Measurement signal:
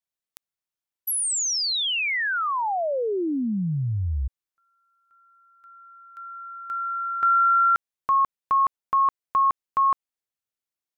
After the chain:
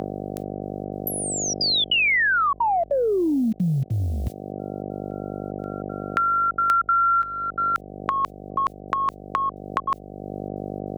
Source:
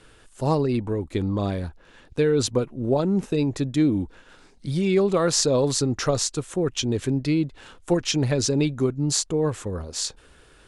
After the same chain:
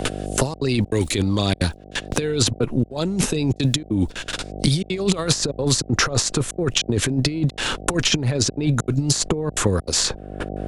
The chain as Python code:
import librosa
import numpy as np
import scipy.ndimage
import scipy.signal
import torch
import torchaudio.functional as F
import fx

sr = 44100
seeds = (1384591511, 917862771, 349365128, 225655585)

y = fx.gate_hold(x, sr, open_db=-40.0, close_db=-42.0, hold_ms=19.0, range_db=-26, attack_ms=0.46, release_ms=24.0)
y = fx.over_compress(y, sr, threshold_db=-27.0, ratio=-0.5)
y = fx.step_gate(y, sr, bpm=196, pattern='xxxxxxx.xxx.x', floor_db=-60.0, edge_ms=4.5)
y = fx.dmg_buzz(y, sr, base_hz=50.0, harmonics=15, level_db=-54.0, tilt_db=-3, odd_only=False)
y = fx.band_squash(y, sr, depth_pct=100)
y = y * librosa.db_to_amplitude(8.0)